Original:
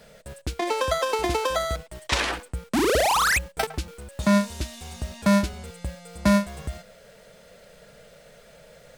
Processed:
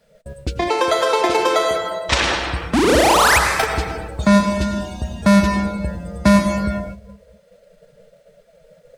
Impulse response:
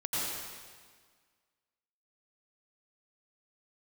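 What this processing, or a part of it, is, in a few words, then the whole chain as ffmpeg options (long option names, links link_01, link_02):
keyed gated reverb: -filter_complex "[0:a]asplit=3[link_01][link_02][link_03];[1:a]atrim=start_sample=2205[link_04];[link_02][link_04]afir=irnorm=-1:irlink=0[link_05];[link_03]apad=whole_len=395728[link_06];[link_05][link_06]sidechaingate=range=-33dB:threshold=-49dB:ratio=16:detection=peak,volume=-6.5dB[link_07];[link_01][link_07]amix=inputs=2:normalize=0,asettb=1/sr,asplit=3[link_08][link_09][link_10];[link_08]atrim=end=0.684[link_11];[link_09]atrim=start=0.68:end=2.09,asetpts=PTS-STARTPTS,afade=type=in:duration=0.004:curve=qsin,afade=type=out:start_time=1.406:duration=0.004:curve=qsin,highpass=220[link_12];[link_10]atrim=start=2.086[link_13];[link_11][link_12]acrossfade=duration=0.004:curve1=hsin:curve2=qsin[link_14];[link_14][link_13]acrossfade=duration=0.004:curve1=qsin:curve2=hsin,afftdn=noise_reduction=15:noise_floor=-37,volume=3.5dB"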